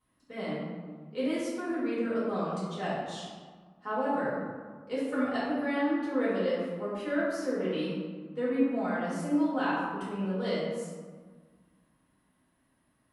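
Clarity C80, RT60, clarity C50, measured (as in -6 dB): 1.0 dB, 1.6 s, -2.0 dB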